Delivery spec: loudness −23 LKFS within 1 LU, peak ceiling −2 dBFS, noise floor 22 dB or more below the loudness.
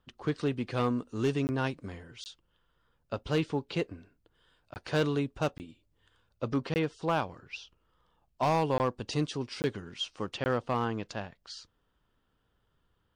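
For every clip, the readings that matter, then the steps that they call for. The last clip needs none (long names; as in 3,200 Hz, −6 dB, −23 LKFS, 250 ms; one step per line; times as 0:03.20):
share of clipped samples 0.4%; peaks flattened at −20.5 dBFS; number of dropouts 8; longest dropout 19 ms; integrated loudness −32.0 LKFS; sample peak −20.5 dBFS; target loudness −23.0 LKFS
→ clipped peaks rebuilt −20.5 dBFS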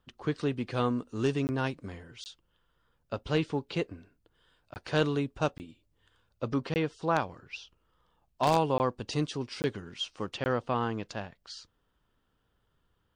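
share of clipped samples 0.0%; number of dropouts 8; longest dropout 19 ms
→ repair the gap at 0:01.47/0:02.24/0:04.74/0:05.58/0:06.74/0:08.78/0:09.62/0:10.44, 19 ms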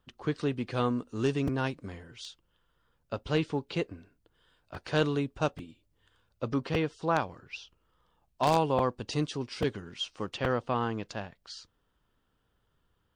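number of dropouts 0; integrated loudness −31.5 LKFS; sample peak −11.5 dBFS; target loudness −23.0 LKFS
→ level +8.5 dB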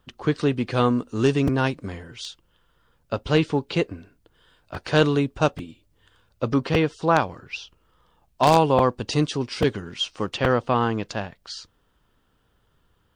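integrated loudness −23.0 LKFS; sample peak −3.0 dBFS; background noise floor −66 dBFS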